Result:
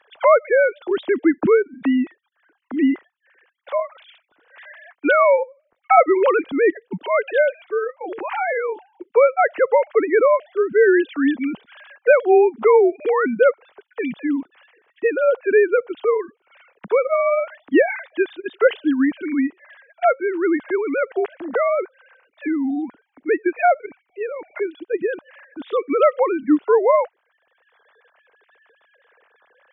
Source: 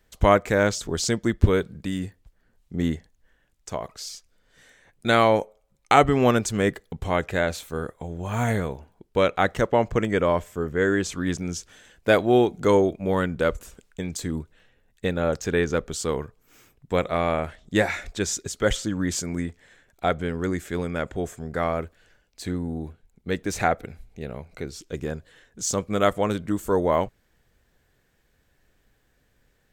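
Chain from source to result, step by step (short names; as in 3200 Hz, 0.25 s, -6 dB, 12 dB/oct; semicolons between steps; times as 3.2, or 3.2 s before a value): sine-wave speech; three-band squash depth 40%; gain +6 dB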